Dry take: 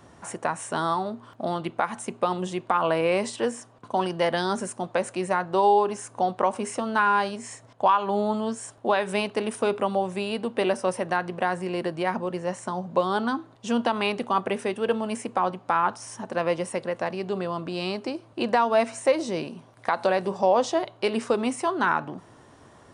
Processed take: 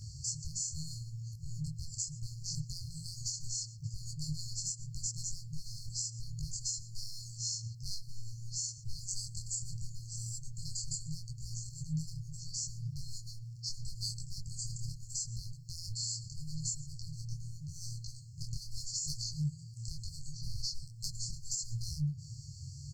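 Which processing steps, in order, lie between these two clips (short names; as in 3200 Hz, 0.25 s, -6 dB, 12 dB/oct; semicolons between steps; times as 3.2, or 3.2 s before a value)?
dynamic EQ 7200 Hz, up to -5 dB, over -54 dBFS, Q 1.4; formant shift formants -4 st; in parallel at -4 dB: one-sided clip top -30 dBFS; on the sum: echo 0.119 s -22 dB; soft clip -16.5 dBFS, distortion -14 dB; FFT band-reject 160–4200 Hz; compressor 10:1, threshold -41 dBFS, peak gain reduction 9.5 dB; detuned doubles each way 27 cents; gain +11.5 dB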